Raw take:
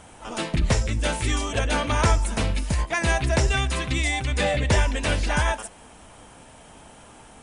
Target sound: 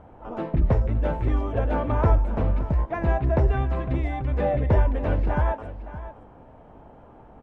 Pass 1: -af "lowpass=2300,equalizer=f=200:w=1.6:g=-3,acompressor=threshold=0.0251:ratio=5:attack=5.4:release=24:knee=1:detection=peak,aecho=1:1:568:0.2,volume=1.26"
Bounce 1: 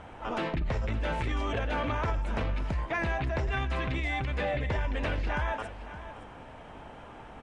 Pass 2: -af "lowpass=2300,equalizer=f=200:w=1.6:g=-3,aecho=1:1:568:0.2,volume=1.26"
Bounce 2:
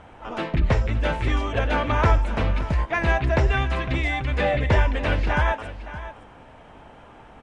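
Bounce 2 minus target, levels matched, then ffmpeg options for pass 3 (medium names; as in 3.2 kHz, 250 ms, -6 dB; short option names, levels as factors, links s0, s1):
2 kHz band +10.5 dB
-af "lowpass=830,equalizer=f=200:w=1.6:g=-3,aecho=1:1:568:0.2,volume=1.26"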